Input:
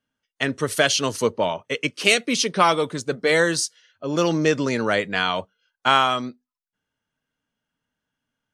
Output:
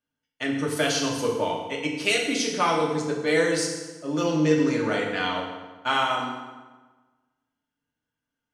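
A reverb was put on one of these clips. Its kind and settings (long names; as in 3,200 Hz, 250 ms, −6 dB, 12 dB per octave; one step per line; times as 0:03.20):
feedback delay network reverb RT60 1.3 s, low-frequency decay 1.1×, high-frequency decay 0.75×, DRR −2 dB
level −8.5 dB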